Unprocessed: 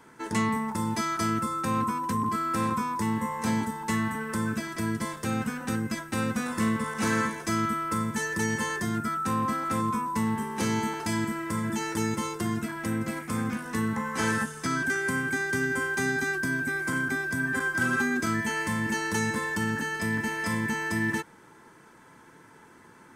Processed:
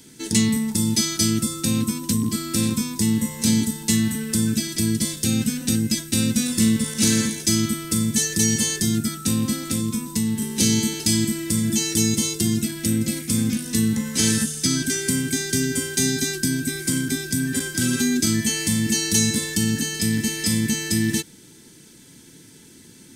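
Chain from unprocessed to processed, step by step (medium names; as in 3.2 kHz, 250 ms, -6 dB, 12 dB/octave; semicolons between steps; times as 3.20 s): FFT filter 280 Hz 0 dB, 1.1 kHz -23 dB, 3.8 kHz +8 dB; 9.64–10.42 s: compression 2:1, threshold -30 dBFS, peak gain reduction 4 dB; trim +8.5 dB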